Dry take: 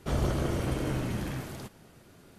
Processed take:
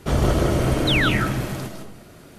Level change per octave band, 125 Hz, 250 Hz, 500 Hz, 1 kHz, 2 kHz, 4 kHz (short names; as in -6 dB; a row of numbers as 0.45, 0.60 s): +9.5, +10.0, +10.5, +12.0, +17.5, +18.0 dB